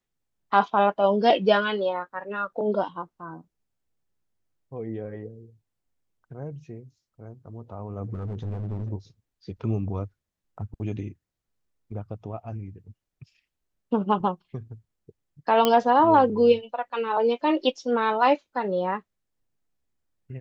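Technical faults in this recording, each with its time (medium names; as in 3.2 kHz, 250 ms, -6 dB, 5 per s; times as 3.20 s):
8.14–8.89 s: clipped -28 dBFS
15.65 s: pop -7 dBFS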